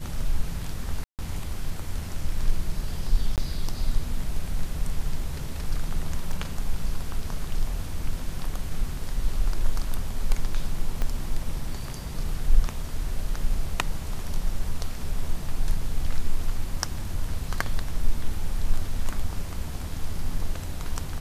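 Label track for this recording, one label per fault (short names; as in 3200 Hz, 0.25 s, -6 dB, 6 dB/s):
1.040000	1.190000	gap 0.148 s
3.360000	3.380000	gap 18 ms
6.320000	6.320000	gap 3.9 ms
11.020000	11.020000	pop -15 dBFS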